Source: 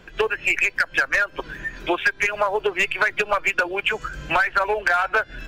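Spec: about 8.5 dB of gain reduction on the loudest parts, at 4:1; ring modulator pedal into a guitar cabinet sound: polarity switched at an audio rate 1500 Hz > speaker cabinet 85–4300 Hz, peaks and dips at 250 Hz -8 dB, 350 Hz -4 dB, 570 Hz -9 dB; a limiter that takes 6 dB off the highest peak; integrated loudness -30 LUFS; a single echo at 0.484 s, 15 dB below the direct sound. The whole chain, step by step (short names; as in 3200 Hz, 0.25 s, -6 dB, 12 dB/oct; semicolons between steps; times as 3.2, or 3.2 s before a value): compressor 4:1, threshold -26 dBFS; limiter -20.5 dBFS; echo 0.484 s -15 dB; polarity switched at an audio rate 1500 Hz; speaker cabinet 85–4300 Hz, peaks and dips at 250 Hz -8 dB, 350 Hz -4 dB, 570 Hz -9 dB; gain +1 dB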